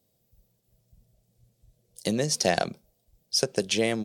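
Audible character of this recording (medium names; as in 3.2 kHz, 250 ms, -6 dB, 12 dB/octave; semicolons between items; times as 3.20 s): noise floor -73 dBFS; spectral tilt -3.0 dB/octave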